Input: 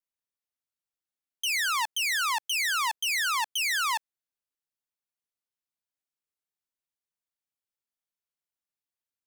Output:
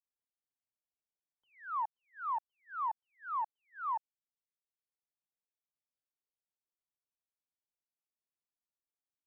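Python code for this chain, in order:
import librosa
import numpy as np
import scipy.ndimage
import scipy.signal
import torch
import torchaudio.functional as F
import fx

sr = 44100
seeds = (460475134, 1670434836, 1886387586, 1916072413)

y = scipy.signal.sosfilt(scipy.signal.butter(6, 1100.0, 'lowpass', fs=sr, output='sos'), x)
y = fx.transient(y, sr, attack_db=10, sustain_db=-5)
y = y * librosa.db_to_amplitude(-6.5)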